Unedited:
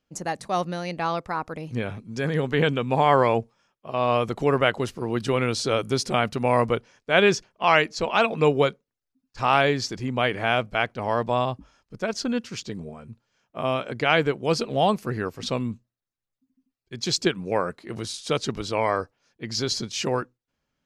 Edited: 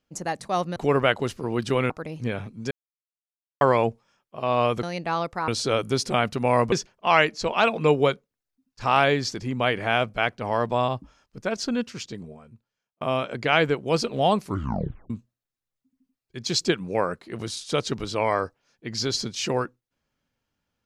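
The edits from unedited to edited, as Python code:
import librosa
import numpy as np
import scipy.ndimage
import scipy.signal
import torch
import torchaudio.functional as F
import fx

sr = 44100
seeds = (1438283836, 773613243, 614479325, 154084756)

y = fx.edit(x, sr, fx.swap(start_s=0.76, length_s=0.65, other_s=4.34, other_length_s=1.14),
    fx.silence(start_s=2.22, length_s=0.9),
    fx.cut(start_s=6.72, length_s=0.57),
    fx.fade_out_span(start_s=12.39, length_s=1.19),
    fx.tape_stop(start_s=14.97, length_s=0.7), tone=tone)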